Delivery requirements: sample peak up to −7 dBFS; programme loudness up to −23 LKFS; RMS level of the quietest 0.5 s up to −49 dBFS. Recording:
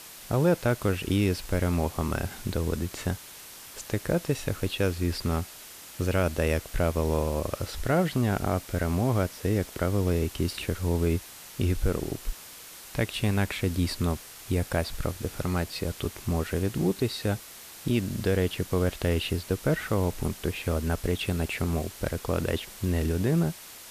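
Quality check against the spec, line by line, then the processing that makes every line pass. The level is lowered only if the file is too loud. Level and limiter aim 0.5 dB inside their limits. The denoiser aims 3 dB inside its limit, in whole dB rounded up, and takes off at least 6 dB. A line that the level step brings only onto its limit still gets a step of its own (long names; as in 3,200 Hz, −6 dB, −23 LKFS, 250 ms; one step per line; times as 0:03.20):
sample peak −12.0 dBFS: in spec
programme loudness −28.5 LKFS: in spec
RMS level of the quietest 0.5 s −46 dBFS: out of spec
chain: broadband denoise 6 dB, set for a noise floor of −46 dBFS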